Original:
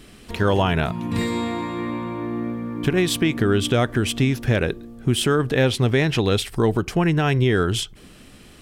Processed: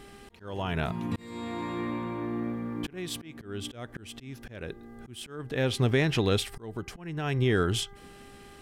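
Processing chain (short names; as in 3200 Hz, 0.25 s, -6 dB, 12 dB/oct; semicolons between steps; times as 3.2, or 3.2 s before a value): buzz 400 Hz, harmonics 5, -48 dBFS -4 dB/oct; auto swell 0.551 s; gain -5.5 dB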